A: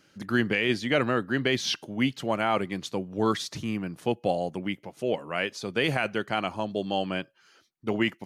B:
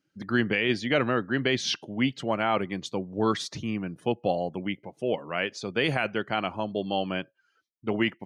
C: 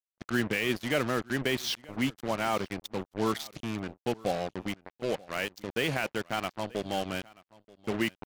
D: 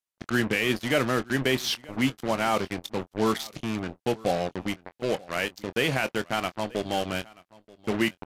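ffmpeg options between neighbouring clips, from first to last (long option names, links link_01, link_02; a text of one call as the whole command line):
ffmpeg -i in.wav -af "afftdn=noise_reduction=19:noise_floor=-50" out.wav
ffmpeg -i in.wav -af "acrusher=bits=4:mix=0:aa=0.5,aecho=1:1:932:0.0708,volume=-4dB" out.wav
ffmpeg -i in.wav -filter_complex "[0:a]aresample=32000,aresample=44100,asplit=2[link_01][link_02];[link_02]adelay=23,volume=-13.5dB[link_03];[link_01][link_03]amix=inputs=2:normalize=0,volume=4dB" out.wav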